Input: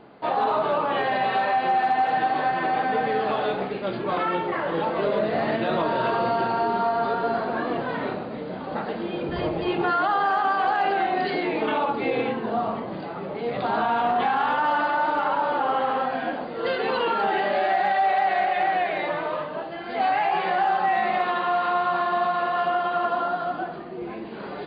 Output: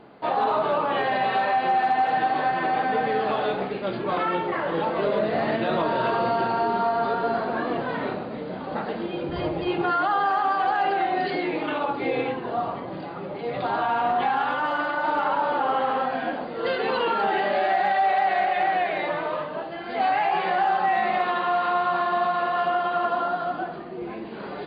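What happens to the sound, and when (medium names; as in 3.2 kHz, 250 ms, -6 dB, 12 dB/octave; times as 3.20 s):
9.06–15.04 s: comb of notches 220 Hz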